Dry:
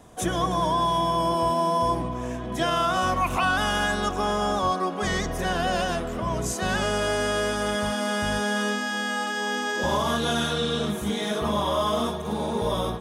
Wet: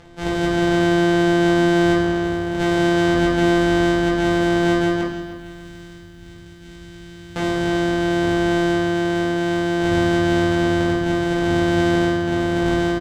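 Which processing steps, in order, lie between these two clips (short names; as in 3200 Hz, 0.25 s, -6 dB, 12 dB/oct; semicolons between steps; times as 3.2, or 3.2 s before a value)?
sample sorter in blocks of 256 samples; 5.01–7.36 passive tone stack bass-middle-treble 6-0-2; upward compressor, threshold -45 dBFS; air absorption 73 m; reverse bouncing-ball echo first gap 20 ms, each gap 1.6×, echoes 5; reverb RT60 0.50 s, pre-delay 4 ms, DRR 0 dB; lo-fi delay 0.296 s, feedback 35%, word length 8-bit, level -15 dB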